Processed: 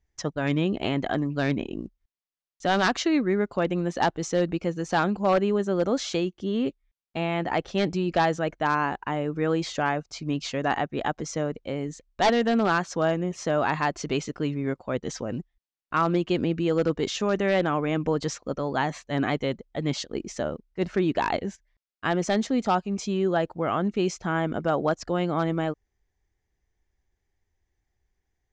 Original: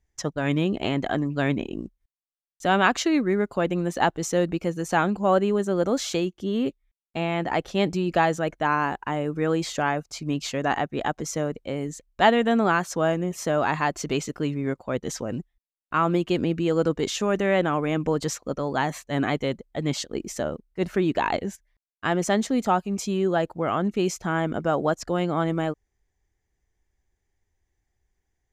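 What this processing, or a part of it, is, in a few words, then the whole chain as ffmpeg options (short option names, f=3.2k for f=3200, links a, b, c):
synthesiser wavefolder: -af "aeval=exprs='0.237*(abs(mod(val(0)/0.237+3,4)-2)-1)':c=same,lowpass=f=6.5k:w=0.5412,lowpass=f=6.5k:w=1.3066,volume=-1dB"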